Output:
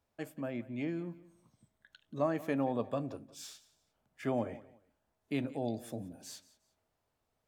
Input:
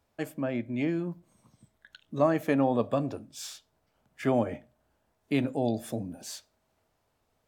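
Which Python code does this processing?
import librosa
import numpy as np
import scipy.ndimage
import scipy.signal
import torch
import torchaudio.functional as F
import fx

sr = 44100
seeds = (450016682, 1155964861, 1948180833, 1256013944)

y = fx.echo_feedback(x, sr, ms=178, feedback_pct=28, wet_db=-19.0)
y = F.gain(torch.from_numpy(y), -7.5).numpy()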